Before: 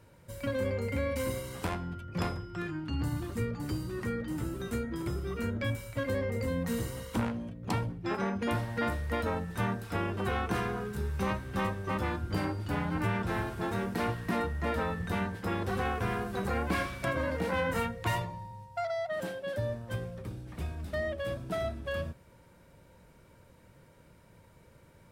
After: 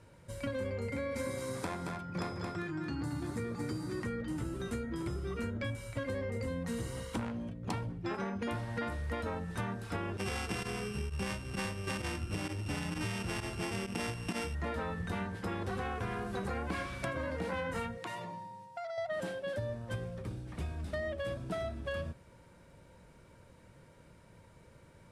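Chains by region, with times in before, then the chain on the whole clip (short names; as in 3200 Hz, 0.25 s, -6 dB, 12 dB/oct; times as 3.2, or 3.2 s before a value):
0.9–4.03 HPF 120 Hz + notch 2900 Hz, Q 5.7 + echo 0.224 s -6 dB
10.17–14.55 sample sorter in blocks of 16 samples + pump 130 bpm, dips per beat 1, -15 dB, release 61 ms
17.97–18.98 HPF 160 Hz 24 dB/oct + compressor 5:1, threshold -38 dBFS
whole clip: LPF 11000 Hz 24 dB/oct; compressor, threshold -33 dBFS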